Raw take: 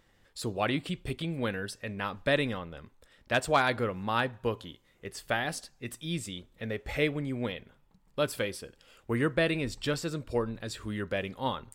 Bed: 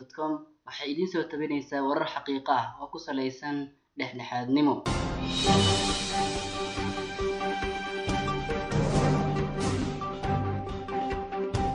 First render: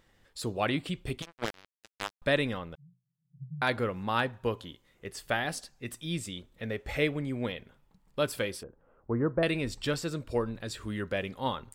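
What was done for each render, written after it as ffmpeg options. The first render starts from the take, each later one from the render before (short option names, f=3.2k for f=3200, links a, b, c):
-filter_complex "[0:a]asettb=1/sr,asplit=3[a][b][c];[a]atrim=end=1.224[d];[b]atrim=start=1.22:end=2.22,asetpts=PTS-STARTPTS,afade=t=in:d=0.004:c=qsin,afade=t=out:st=0.996:d=0.004:c=qsin,acrusher=bits=3:mix=0:aa=0.5[e];[c]atrim=start=2.216[f];[d][e]acrossfade=d=0.004:c1=hsin:c2=qsin[g];[g][f]acrossfade=d=0.004:c1=qsin:c2=hsin,asettb=1/sr,asplit=3[h][i][j];[h]atrim=end=2.754[k];[i]atrim=start=2.75:end=3.62,asetpts=PTS-STARTPTS,afade=t=in:d=0.004:c=qsin,afade=t=out:st=0.866:d=0.004:c=qsin,asuperpass=centerf=150:order=20:qfactor=2.8[l];[j]atrim=start=3.616[m];[k][l]acrossfade=d=0.004:c1=hsin:c2=qsin[n];[n][m]acrossfade=d=0.004:c1=qsin:c2=hsin,asettb=1/sr,asplit=3[o][p][q];[o]atrim=end=8.634[r];[p]atrim=start=8.63:end=9.43,asetpts=PTS-STARTPTS,afade=t=in:d=0.004:c=qsin,afade=t=out:st=0.796:d=0.004:c=qsin,lowpass=f=1.2k:w=0.5412,lowpass=f=1.2k:w=1.3066[s];[q]atrim=start=9.426[t];[r][s]acrossfade=d=0.004:c1=hsin:c2=qsin[u];[u][t]acrossfade=d=0.004:c1=qsin:c2=hsin"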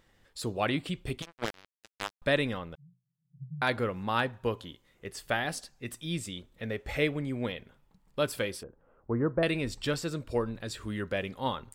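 -af anull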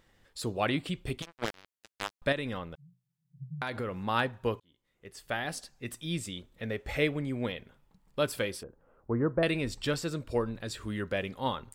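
-filter_complex "[0:a]asettb=1/sr,asplit=3[a][b][c];[a]atrim=end=2.324[d];[b]atrim=start=2.32:end=3.94,asetpts=PTS-STARTPTS,afade=t=in:d=0.004:c=qsin,afade=t=out:st=1.616:d=0.004:c=qsin,acompressor=threshold=-30dB:ratio=6:attack=3.2:release=140:knee=1:detection=peak[e];[c]atrim=start=3.936[f];[d][e]acrossfade=d=0.004:c1=hsin:c2=qsin[g];[g][f]acrossfade=d=0.004:c1=qsin:c2=hsin,asplit=2[h][i];[h]atrim=end=4.6,asetpts=PTS-STARTPTS,afade=t=out:st=4.596:d=0.004:c=hsin[j];[i]atrim=start=4.6,asetpts=PTS-STARTPTS,afade=t=in:d=1.14[k];[j][k]concat=n=2:v=0:a=1"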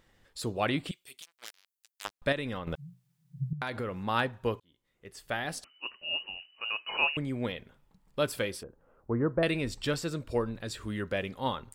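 -filter_complex "[0:a]asettb=1/sr,asplit=3[a][b][c];[a]atrim=end=0.914[d];[b]atrim=start=0.91:end=2.05,asetpts=PTS-STARTPTS,afade=t=in:d=0.004:c=qsin,afade=t=out:st=1.136:d=0.004:c=qsin,aderivative[e];[c]atrim=start=2.046[f];[d][e]acrossfade=d=0.004:c1=hsin:c2=qsin[g];[g][f]acrossfade=d=0.004:c1=qsin:c2=hsin,asettb=1/sr,asplit=3[h][i][j];[h]atrim=end=5.644[k];[i]atrim=start=5.64:end=7.17,asetpts=PTS-STARTPTS,afade=t=in:d=0.004:c=qsin,afade=t=out:st=1.526:d=0.004:c=qsin,lowpass=f=2.6k:t=q:w=0.5098,lowpass=f=2.6k:t=q:w=0.6013,lowpass=f=2.6k:t=q:w=0.9,lowpass=f=2.6k:t=q:w=2.563,afreqshift=-3000[l];[j]atrim=start=7.166[m];[k][l]acrossfade=d=0.004:c1=hsin:c2=qsin[n];[n][m]acrossfade=d=0.004:c1=qsin:c2=hsin,asplit=3[o][p][q];[o]atrim=end=2.672[r];[p]atrim=start=2.668:end=3.532,asetpts=PTS-STARTPTS,volume=10dB[s];[q]atrim=start=3.528[t];[r][s]acrossfade=d=0.004:c1=hsin:c2=hsin[u];[u][t]acrossfade=d=0.004:c1=hsin:c2=hsin"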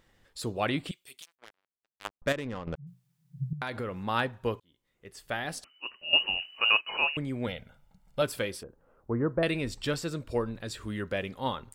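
-filter_complex "[0:a]asettb=1/sr,asplit=3[a][b][c];[a]atrim=end=1.354[d];[b]atrim=start=1.35:end=2.87,asetpts=PTS-STARTPTS,afade=t=in:d=0.004:c=qsin,afade=t=out:st=1.516:d=0.004:c=qsin,adynamicsmooth=sensitivity=5:basefreq=930[e];[c]atrim=start=2.866[f];[d][e]acrossfade=d=0.004:c1=hsin:c2=qsin[g];[g][f]acrossfade=d=0.004:c1=qsin:c2=hsin,asettb=1/sr,asplit=3[h][i][j];[h]atrim=end=7.474[k];[i]atrim=start=7.47:end=8.22,asetpts=PTS-STARTPTS,afade=t=in:d=0.004:c=qsin,afade=t=out:st=0.746:d=0.004:c=qsin,aecho=1:1:1.4:0.69,atrim=end_sample=33075[l];[j]atrim=start=8.216[m];[k][l]acrossfade=d=0.004:c1=hsin:c2=qsin[n];[n][m]acrossfade=d=0.004:c1=qsin:c2=hsin,asplit=3[o][p][q];[o]atrim=end=6.132[r];[p]atrim=start=6.128:end=6.812,asetpts=PTS-STARTPTS,volume=11dB[s];[q]atrim=start=6.808[t];[r][s]acrossfade=d=0.004:c1=hsin:c2=hsin[u];[u][t]acrossfade=d=0.004:c1=hsin:c2=hsin"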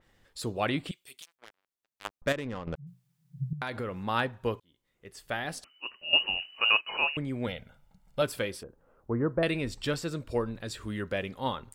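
-af "adynamicequalizer=threshold=0.00891:dfrequency=3700:dqfactor=0.7:tfrequency=3700:tqfactor=0.7:attack=5:release=100:ratio=0.375:range=2.5:mode=cutabove:tftype=highshelf"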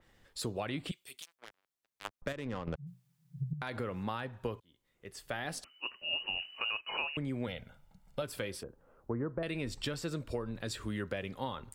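-filter_complex "[0:a]acrossover=split=110[a][b];[b]alimiter=limit=-20.5dB:level=0:latency=1:release=231[c];[a][c]amix=inputs=2:normalize=0,acompressor=threshold=-32dB:ratio=6"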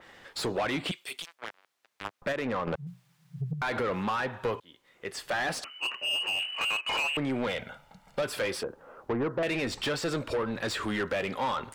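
-filter_complex "[0:a]asplit=2[a][b];[b]highpass=f=720:p=1,volume=25dB,asoftclip=type=tanh:threshold=-20dB[c];[a][c]amix=inputs=2:normalize=0,lowpass=f=2.6k:p=1,volume=-6dB"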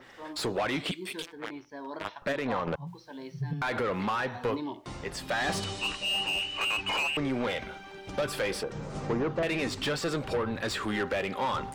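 -filter_complex "[1:a]volume=-12.5dB[a];[0:a][a]amix=inputs=2:normalize=0"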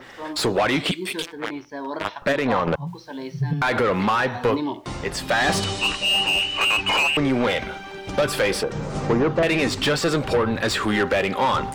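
-af "volume=9.5dB"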